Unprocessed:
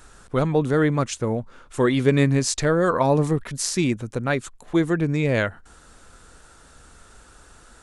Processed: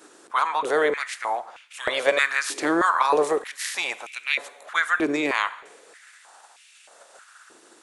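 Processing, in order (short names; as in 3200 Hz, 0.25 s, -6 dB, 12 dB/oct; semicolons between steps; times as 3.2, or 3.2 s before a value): spectral limiter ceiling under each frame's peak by 20 dB; two-slope reverb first 0.96 s, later 2.9 s, DRR 13.5 dB; stepped high-pass 3.2 Hz 330–2500 Hz; gain -6 dB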